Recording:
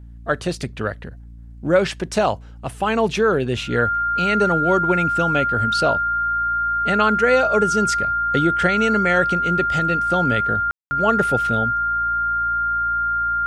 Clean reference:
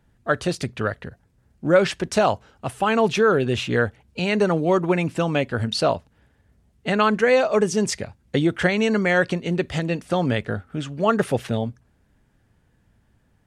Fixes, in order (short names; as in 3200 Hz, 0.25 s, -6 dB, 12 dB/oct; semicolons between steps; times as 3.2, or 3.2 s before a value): de-hum 57.5 Hz, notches 5; notch 1400 Hz, Q 30; room tone fill 10.71–10.91